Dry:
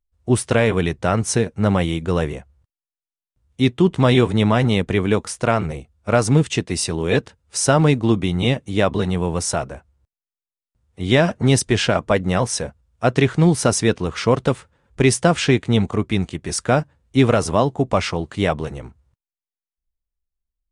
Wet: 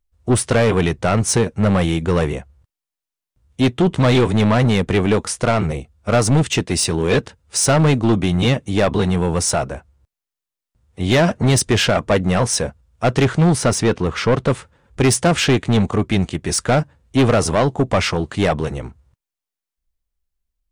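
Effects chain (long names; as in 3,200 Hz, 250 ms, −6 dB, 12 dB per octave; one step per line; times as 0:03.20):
soft clipping −15 dBFS, distortion −10 dB
0:13.58–0:14.50: high-shelf EQ 4,700 Hz −7 dB
level +5.5 dB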